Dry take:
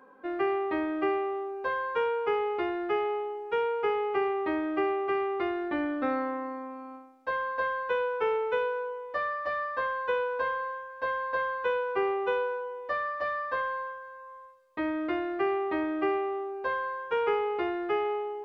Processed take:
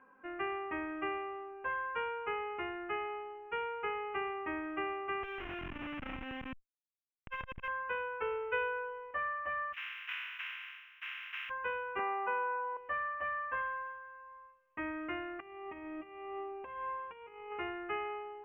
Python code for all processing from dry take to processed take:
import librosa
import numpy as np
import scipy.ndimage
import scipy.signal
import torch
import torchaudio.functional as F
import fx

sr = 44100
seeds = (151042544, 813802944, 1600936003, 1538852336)

y = fx.chain(x, sr, fx.schmitt(flips_db=-31.5),
    fx.high_shelf(hz=3500.0, db=8.5),
    fx.transformer_sat(knee_hz=440.0), at=(5.23, 7.68))
y = fx.chain(y, sr, fx.peak_eq(hz=820.0, db=-10.0, octaves=0.25),
    fx.comb(ms=2.0, depth=0.67), at=(8.22, 9.11))
y = fx.spec_flatten(y, sr, power=0.16, at=(9.72, 11.49), fade=0.02)
y = fx.bessel_highpass(y, sr, hz=2000.0, order=8, at=(9.72, 11.49), fade=0.02)
y = fx.chain(y, sr, fx.cabinet(low_hz=210.0, low_slope=24, high_hz=2400.0, hz=(240.0, 420.0, 650.0, 940.0), db=(6, -7, 9, 6)),
    fx.env_flatten(amount_pct=50), at=(11.99, 12.77))
y = fx.chain(y, sr, fx.over_compress(threshold_db=-33.0, ratio=-0.5),
    fx.peak_eq(hz=1500.0, db=-13.0, octaves=0.37), at=(15.4, 17.52))
y = scipy.signal.sosfilt(scipy.signal.ellip(4, 1.0, 40, 2800.0, 'lowpass', fs=sr, output='sos'), y)
y = fx.peak_eq(y, sr, hz=470.0, db=-12.0, octaves=2.3)